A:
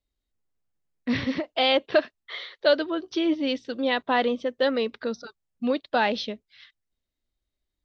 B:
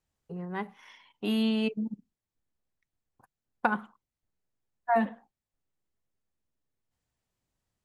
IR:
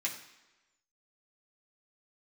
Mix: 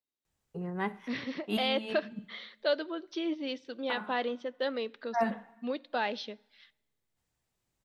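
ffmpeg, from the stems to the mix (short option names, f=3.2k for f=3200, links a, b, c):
-filter_complex "[0:a]highpass=200,volume=-9dB,asplit=3[a][b][c];[b]volume=-19.5dB[d];[1:a]adelay=250,volume=1dB,asplit=2[e][f];[f]volume=-14dB[g];[c]apad=whole_len=357136[h];[e][h]sidechaincompress=threshold=-51dB:ratio=8:attack=11:release=121[i];[2:a]atrim=start_sample=2205[j];[d][g]amix=inputs=2:normalize=0[k];[k][j]afir=irnorm=-1:irlink=0[l];[a][i][l]amix=inputs=3:normalize=0"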